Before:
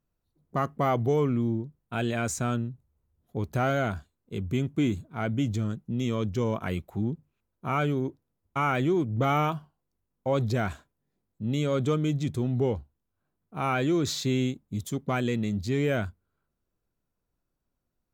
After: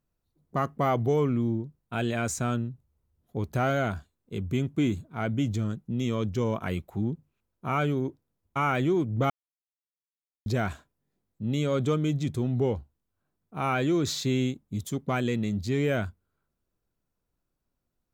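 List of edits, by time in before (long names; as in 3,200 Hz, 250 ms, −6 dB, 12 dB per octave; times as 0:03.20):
0:09.30–0:10.46: silence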